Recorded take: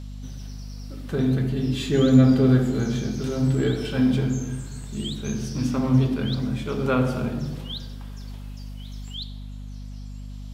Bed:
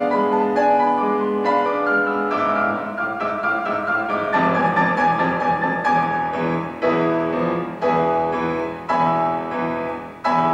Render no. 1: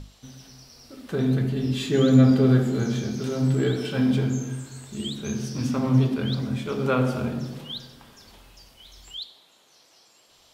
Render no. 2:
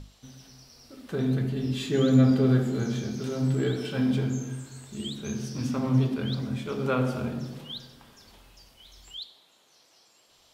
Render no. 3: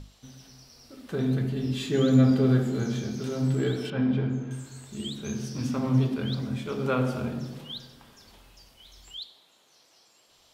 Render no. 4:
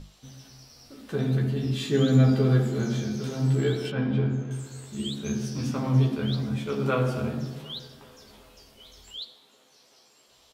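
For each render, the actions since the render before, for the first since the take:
notches 50/100/150/200/250/300 Hz
gain -3.5 dB
3.9–4.51 LPF 2500 Hz
doubler 14 ms -4 dB; band-limited delay 0.379 s, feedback 69%, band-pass 580 Hz, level -22 dB

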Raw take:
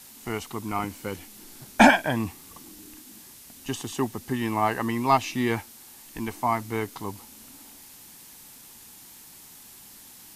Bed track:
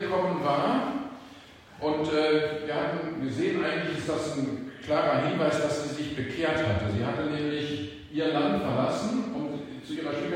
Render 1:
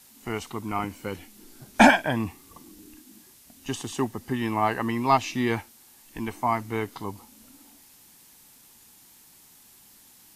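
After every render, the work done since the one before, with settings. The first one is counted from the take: noise print and reduce 6 dB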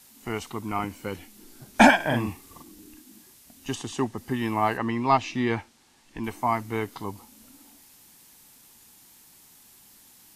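1.96–2.63 doubler 42 ms -3 dB; 3.75–4.18 LPF 8700 Hz; 4.77–6.24 air absorption 75 m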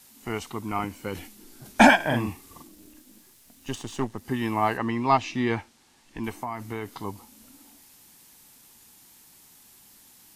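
1.13–1.96 sustainer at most 81 dB/s; 2.67–4.25 half-wave gain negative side -7 dB; 6.37–6.98 compressor 10:1, threshold -27 dBFS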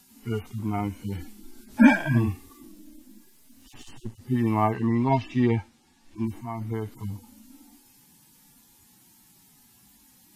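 median-filter separation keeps harmonic; low shelf 210 Hz +10.5 dB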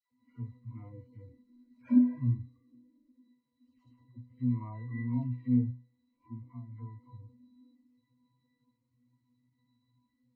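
octave resonator B, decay 0.32 s; dispersion lows, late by 0.113 s, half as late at 930 Hz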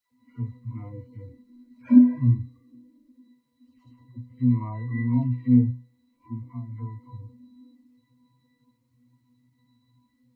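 gain +9 dB

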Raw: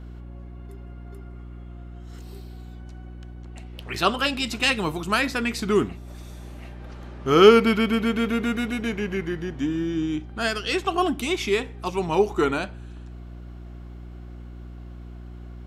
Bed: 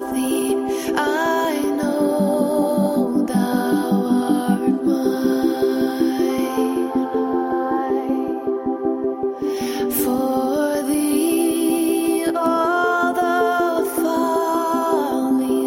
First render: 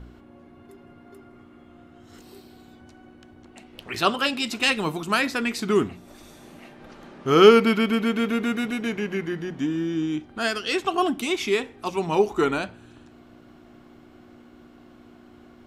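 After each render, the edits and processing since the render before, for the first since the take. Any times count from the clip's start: de-hum 60 Hz, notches 3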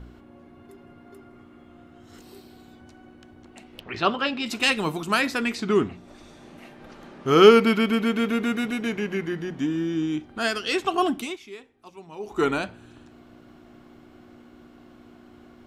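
3.8–4.46 air absorption 180 m; 5.55–6.58 air absorption 66 m; 11.14–12.45 dip -18 dB, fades 0.25 s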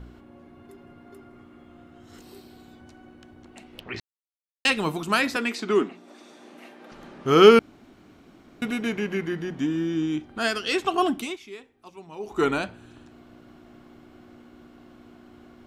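4–4.65 mute; 5.36–6.92 HPF 230 Hz 24 dB/oct; 7.59–8.62 room tone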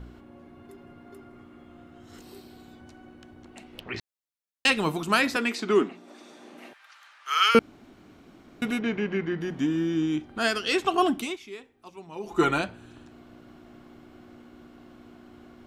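6.73–7.55 HPF 1200 Hz 24 dB/oct; 8.79–9.41 air absorption 150 m; 12.15–12.61 comb 5.8 ms, depth 62%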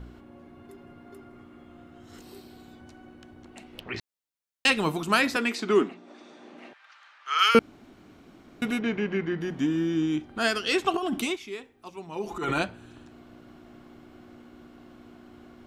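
5.94–7.39 air absorption 92 m; 10.94–12.63 negative-ratio compressor -27 dBFS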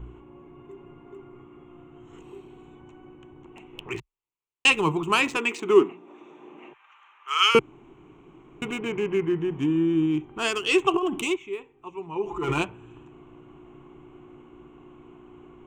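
Wiener smoothing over 9 samples; ripple EQ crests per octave 0.7, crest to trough 12 dB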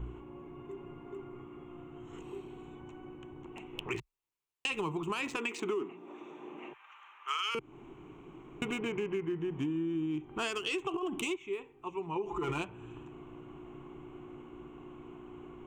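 limiter -15.5 dBFS, peak gain reduction 10.5 dB; compressor, threshold -32 dBFS, peak gain reduction 12.5 dB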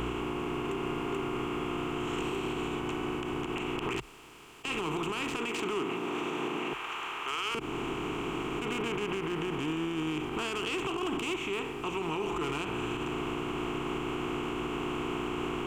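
per-bin compression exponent 0.4; limiter -24 dBFS, peak gain reduction 10 dB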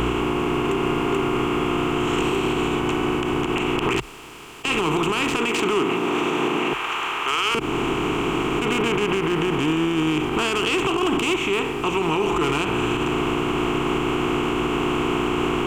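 gain +11.5 dB

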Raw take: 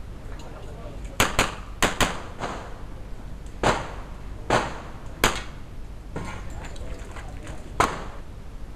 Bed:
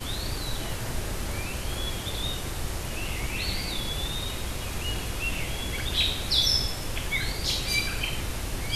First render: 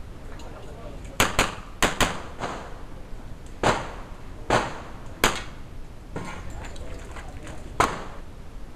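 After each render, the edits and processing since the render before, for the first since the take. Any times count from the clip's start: de-hum 50 Hz, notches 4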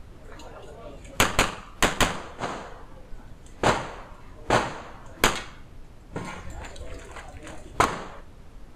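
noise print and reduce 6 dB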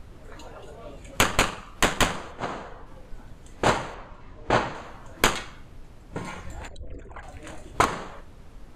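2.31–2.86 high shelf 6500 Hz -> 4100 Hz -9 dB; 3.94–4.75 air absorption 79 m; 6.68–7.23 formant sharpening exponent 2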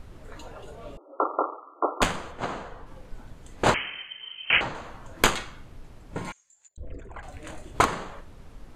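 0.97–2.02 brick-wall FIR band-pass 280–1400 Hz; 3.74–4.61 inverted band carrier 3100 Hz; 6.32–6.78 band-pass 6900 Hz, Q 9.1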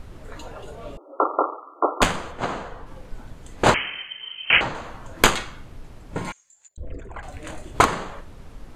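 gain +4.5 dB

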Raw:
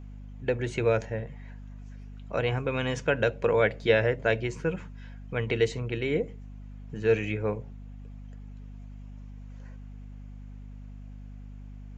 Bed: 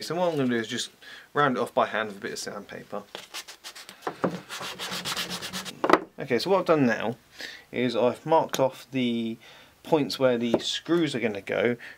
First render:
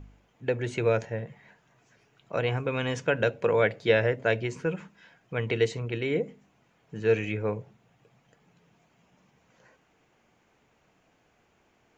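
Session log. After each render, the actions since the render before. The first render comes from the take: de-hum 50 Hz, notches 5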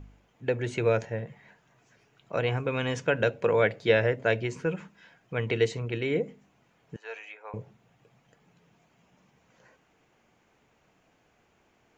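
6.96–7.54 ladder high-pass 690 Hz, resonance 45%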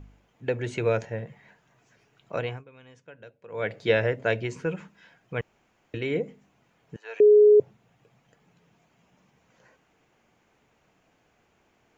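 2.34–3.8 dip -22.5 dB, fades 0.31 s; 5.41–5.94 room tone; 7.2–7.6 bleep 419 Hz -11.5 dBFS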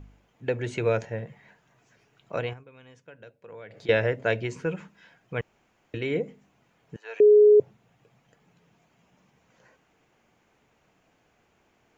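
2.53–3.89 compressor, threshold -40 dBFS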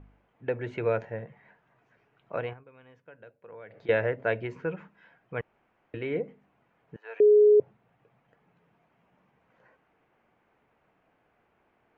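LPF 1900 Hz 12 dB/oct; low shelf 370 Hz -6 dB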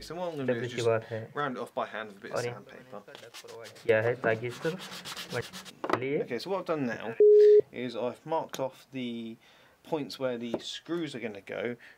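add bed -9.5 dB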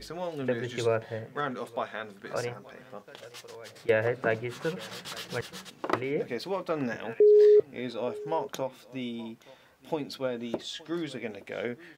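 echo 0.873 s -21 dB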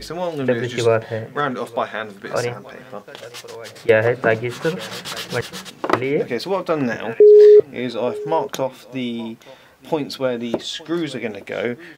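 gain +10.5 dB

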